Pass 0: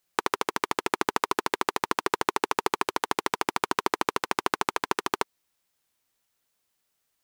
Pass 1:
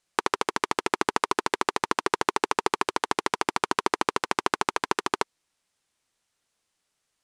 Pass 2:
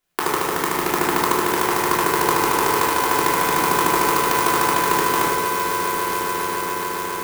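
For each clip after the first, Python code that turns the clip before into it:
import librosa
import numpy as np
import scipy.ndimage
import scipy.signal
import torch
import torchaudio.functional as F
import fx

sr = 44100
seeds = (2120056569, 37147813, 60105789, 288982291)

y1 = scipy.signal.sosfilt(scipy.signal.butter(4, 10000.0, 'lowpass', fs=sr, output='sos'), x)
y1 = y1 * librosa.db_to_amplitude(1.5)
y2 = fx.echo_swell(y1, sr, ms=139, loudest=8, wet_db=-13.0)
y2 = fx.room_shoebox(y2, sr, seeds[0], volume_m3=630.0, walls='mixed', distance_m=3.2)
y2 = fx.clock_jitter(y2, sr, seeds[1], jitter_ms=0.054)
y2 = y2 * librosa.db_to_amplitude(-1.5)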